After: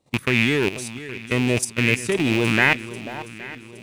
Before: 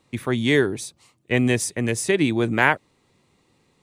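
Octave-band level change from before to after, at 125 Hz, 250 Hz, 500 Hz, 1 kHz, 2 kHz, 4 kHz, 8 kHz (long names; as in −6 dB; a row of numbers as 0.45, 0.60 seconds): +1.0, 0.0, −1.5, −2.5, +3.0, +4.0, −0.5 decibels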